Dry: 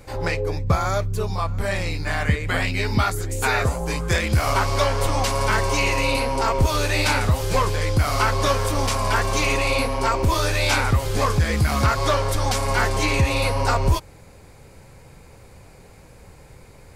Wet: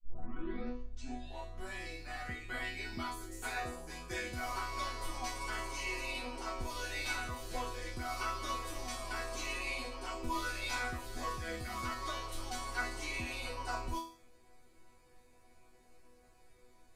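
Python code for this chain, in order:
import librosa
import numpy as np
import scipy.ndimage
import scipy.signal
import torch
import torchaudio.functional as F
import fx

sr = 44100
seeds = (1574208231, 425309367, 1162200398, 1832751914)

y = fx.tape_start_head(x, sr, length_s=1.73)
y = fx.resonator_bank(y, sr, root=59, chord='sus4', decay_s=0.49)
y = F.gain(torch.from_numpy(y), 4.0).numpy()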